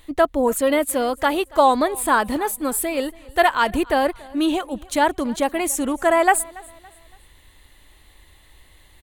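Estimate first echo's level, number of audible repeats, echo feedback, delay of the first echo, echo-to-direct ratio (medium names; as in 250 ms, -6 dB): -23.0 dB, 2, 39%, 282 ms, -22.5 dB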